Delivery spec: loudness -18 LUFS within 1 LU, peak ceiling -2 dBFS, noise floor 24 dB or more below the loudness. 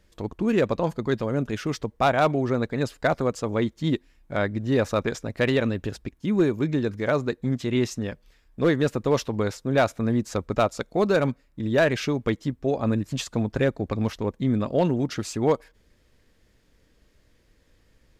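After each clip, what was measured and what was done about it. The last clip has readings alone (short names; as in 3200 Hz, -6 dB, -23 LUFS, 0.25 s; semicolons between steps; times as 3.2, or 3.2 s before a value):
clipped 0.2%; flat tops at -12.5 dBFS; loudness -25.5 LUFS; peak -12.5 dBFS; loudness target -18.0 LUFS
-> clip repair -12.5 dBFS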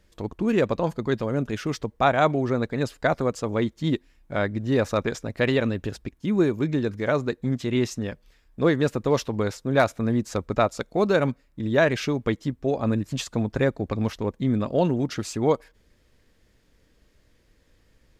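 clipped 0.0%; loudness -25.0 LUFS; peak -6.5 dBFS; loudness target -18.0 LUFS
-> gain +7 dB; limiter -2 dBFS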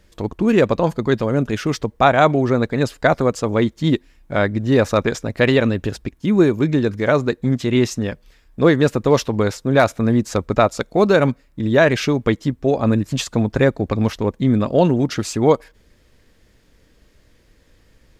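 loudness -18.5 LUFS; peak -2.0 dBFS; noise floor -56 dBFS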